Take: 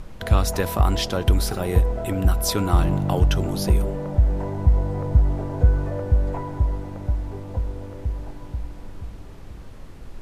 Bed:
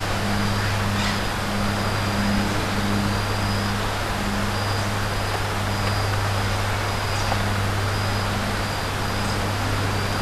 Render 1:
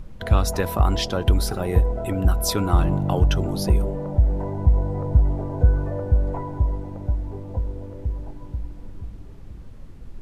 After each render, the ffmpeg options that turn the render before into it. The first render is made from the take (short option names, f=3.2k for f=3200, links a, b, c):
-af "afftdn=nr=8:nf=-39"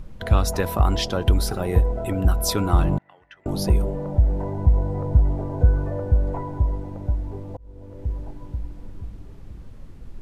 -filter_complex "[0:a]asettb=1/sr,asplit=3[a][b][c];[a]atrim=end=2.984[d];[b]atrim=start=2.98:end=3.46,asetpts=PTS-STARTPTS,afade=t=in:d=0.004:c=qsin,afade=t=out:st=0.476:d=0.004:c=qsin,bandpass=f=1.9k:t=q:w=10[e];[c]atrim=start=3.456[f];[d][e]acrossfade=d=0.004:c1=hsin:c2=qsin[g];[g][f]acrossfade=d=0.004:c1=qsin:c2=hsin,asplit=2[h][i];[h]atrim=end=7.57,asetpts=PTS-STARTPTS,afade=t=out:st=7.566:d=0.004:c=hsin[j];[i]atrim=start=7.57,asetpts=PTS-STARTPTS,afade=t=in:d=0.54[k];[j][k]concat=n=2:v=0:a=1"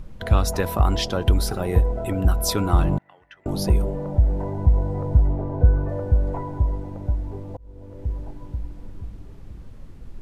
-filter_complex "[0:a]asettb=1/sr,asplit=3[a][b][c];[a]atrim=end=5.274[d];[b]atrim=start=5.27:end=5.89,asetpts=PTS-STARTPTS,afade=t=in:d=0.004:c=qsin,afade=t=out:st=0.616:d=0.004:c=qsin,aemphasis=mode=reproduction:type=75fm[e];[c]atrim=start=5.886[f];[d][e]acrossfade=d=0.004:c1=hsin:c2=qsin[g];[g][f]acrossfade=d=0.004:c1=qsin:c2=hsin"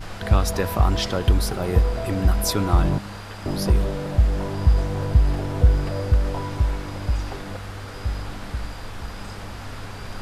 -filter_complex "[1:a]volume=-13dB[a];[0:a][a]amix=inputs=2:normalize=0"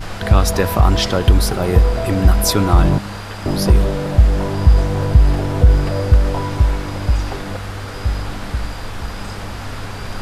-af "volume=7dB,alimiter=limit=-1dB:level=0:latency=1"